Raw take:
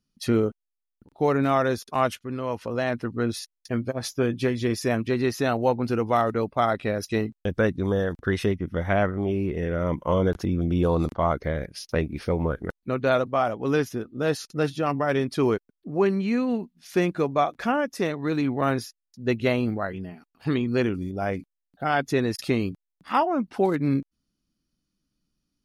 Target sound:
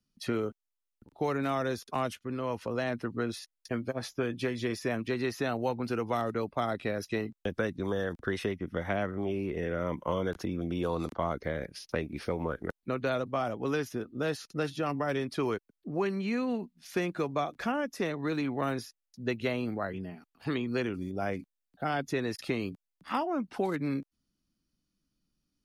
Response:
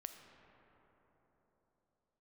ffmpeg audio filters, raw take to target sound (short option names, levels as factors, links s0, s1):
-filter_complex "[0:a]acrossover=split=180|460|1000|3200[s0][s1][s2][s3][s4];[s0]acompressor=threshold=0.01:ratio=4[s5];[s1]acompressor=threshold=0.0282:ratio=4[s6];[s2]acompressor=threshold=0.02:ratio=4[s7];[s3]acompressor=threshold=0.02:ratio=4[s8];[s4]acompressor=threshold=0.00708:ratio=4[s9];[s5][s6][s7][s8][s9]amix=inputs=5:normalize=0,volume=0.75"